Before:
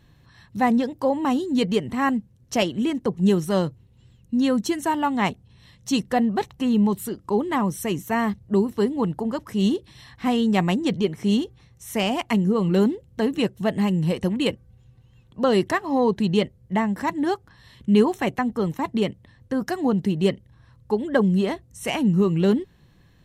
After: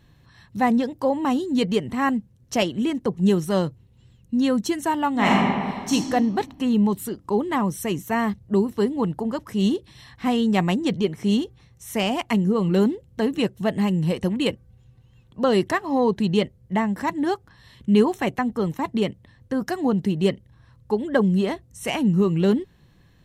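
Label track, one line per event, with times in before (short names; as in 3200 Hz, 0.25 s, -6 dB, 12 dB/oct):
5.120000	5.920000	reverb throw, RT60 1.8 s, DRR -6 dB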